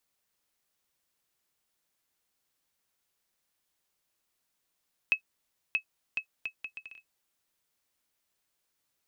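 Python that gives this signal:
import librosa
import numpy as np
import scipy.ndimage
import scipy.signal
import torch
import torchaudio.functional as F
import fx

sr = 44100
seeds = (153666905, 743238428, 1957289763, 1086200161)

y = fx.bouncing_ball(sr, first_gap_s=0.63, ratio=0.67, hz=2580.0, decay_ms=93.0, level_db=-14.5)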